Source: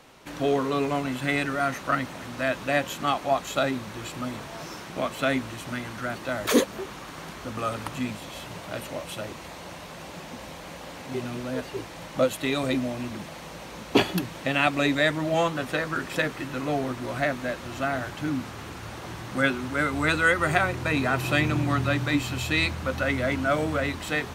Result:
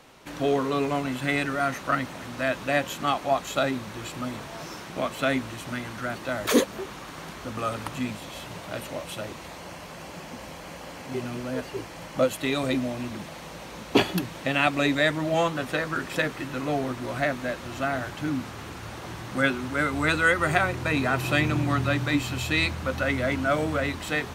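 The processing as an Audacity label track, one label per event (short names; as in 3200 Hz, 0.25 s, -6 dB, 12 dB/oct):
9.560000	12.410000	notch 3700 Hz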